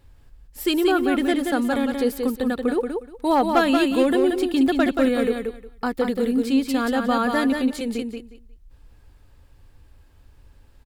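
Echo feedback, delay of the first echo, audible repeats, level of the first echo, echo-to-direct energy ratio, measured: 19%, 180 ms, 3, -5.0 dB, -5.0 dB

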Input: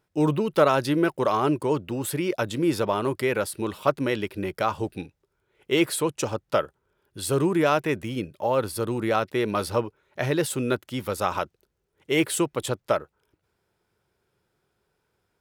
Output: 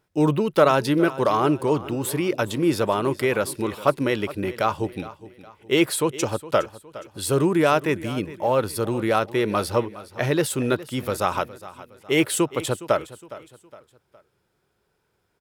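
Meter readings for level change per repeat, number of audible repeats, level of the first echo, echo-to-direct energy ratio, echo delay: -8.0 dB, 3, -17.0 dB, -16.5 dB, 413 ms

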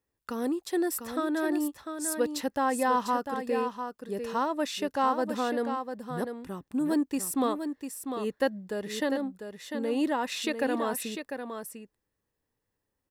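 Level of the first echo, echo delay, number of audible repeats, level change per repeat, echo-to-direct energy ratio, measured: -7.5 dB, 698 ms, 1, no regular repeats, -7.5 dB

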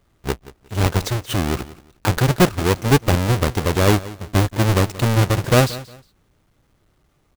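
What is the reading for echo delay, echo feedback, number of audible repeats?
179 ms, 25%, 2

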